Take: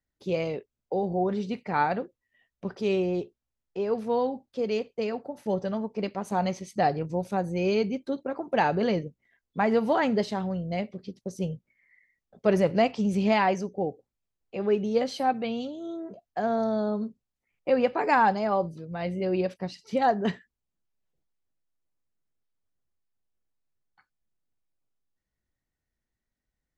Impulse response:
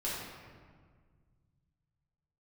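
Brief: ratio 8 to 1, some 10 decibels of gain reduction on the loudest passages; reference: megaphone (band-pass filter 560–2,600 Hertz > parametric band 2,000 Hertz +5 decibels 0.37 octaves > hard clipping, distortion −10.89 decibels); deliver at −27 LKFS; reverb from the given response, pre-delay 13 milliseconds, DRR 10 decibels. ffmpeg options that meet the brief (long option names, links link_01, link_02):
-filter_complex "[0:a]acompressor=threshold=-28dB:ratio=8,asplit=2[link_01][link_02];[1:a]atrim=start_sample=2205,adelay=13[link_03];[link_02][link_03]afir=irnorm=-1:irlink=0,volume=-14.5dB[link_04];[link_01][link_04]amix=inputs=2:normalize=0,highpass=560,lowpass=2600,equalizer=frequency=2000:width_type=o:width=0.37:gain=5,asoftclip=type=hard:threshold=-32.5dB,volume=13dB"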